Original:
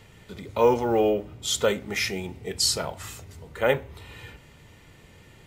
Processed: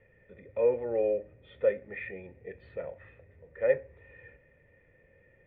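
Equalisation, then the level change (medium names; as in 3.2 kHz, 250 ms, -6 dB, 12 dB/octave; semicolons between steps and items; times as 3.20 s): cascade formant filter e; bass shelf 160 Hz +8.5 dB; peaking EQ 1.4 kHz +4 dB 0.79 oct; 0.0 dB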